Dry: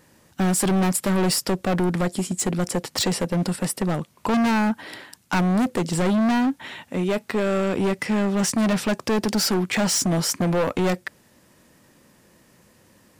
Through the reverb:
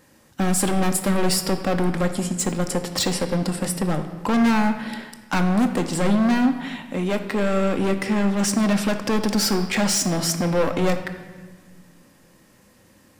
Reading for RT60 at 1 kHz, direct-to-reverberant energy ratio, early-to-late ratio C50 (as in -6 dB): 1.4 s, 6.0 dB, 9.0 dB